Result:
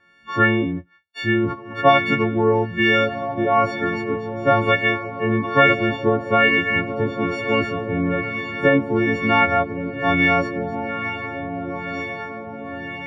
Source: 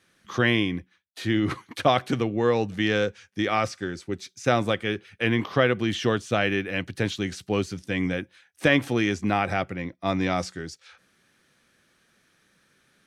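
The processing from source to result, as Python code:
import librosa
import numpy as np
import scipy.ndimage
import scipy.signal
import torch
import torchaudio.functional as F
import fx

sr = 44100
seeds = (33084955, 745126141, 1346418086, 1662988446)

y = fx.freq_snap(x, sr, grid_st=4)
y = fx.echo_diffused(y, sr, ms=1541, feedback_pct=57, wet_db=-9)
y = fx.filter_lfo_lowpass(y, sr, shape='sine', hz=1.1, low_hz=820.0, high_hz=2300.0, q=1.2)
y = y * 10.0 ** (3.5 / 20.0)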